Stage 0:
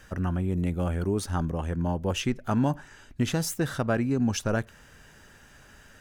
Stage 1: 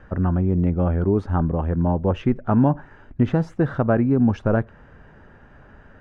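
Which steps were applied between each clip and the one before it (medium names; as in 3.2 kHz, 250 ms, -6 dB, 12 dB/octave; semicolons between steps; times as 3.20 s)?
low-pass 1.2 kHz 12 dB/octave; trim +7.5 dB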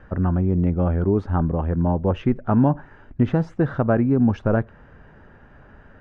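distance through air 56 m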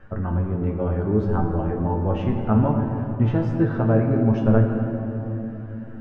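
feedback comb 110 Hz, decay 0.17 s, harmonics all, mix 90%; simulated room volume 210 m³, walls hard, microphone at 0.37 m; trim +4 dB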